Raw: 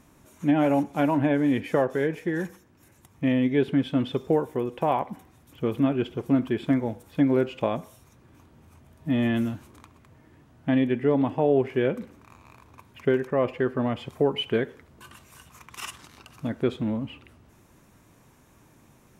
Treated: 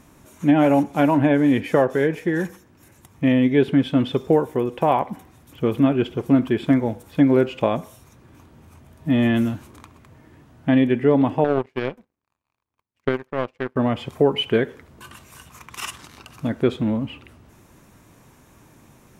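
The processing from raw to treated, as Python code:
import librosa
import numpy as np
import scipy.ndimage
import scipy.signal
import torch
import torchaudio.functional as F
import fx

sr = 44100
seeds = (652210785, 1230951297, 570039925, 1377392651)

y = fx.power_curve(x, sr, exponent=2.0, at=(11.44, 13.76))
y = F.gain(torch.from_numpy(y), 5.5).numpy()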